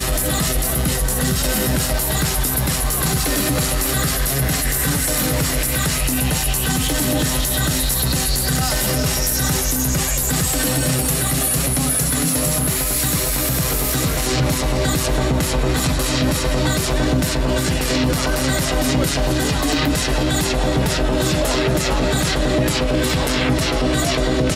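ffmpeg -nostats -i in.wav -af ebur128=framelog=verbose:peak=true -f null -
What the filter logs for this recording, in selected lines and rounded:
Integrated loudness:
  I:         -18.2 LUFS
  Threshold: -28.1 LUFS
Loudness range:
  LRA:         1.3 LU
  Threshold: -38.1 LUFS
  LRA low:   -18.6 LUFS
  LRA high:  -17.3 LUFS
True peak:
  Peak:       -6.2 dBFS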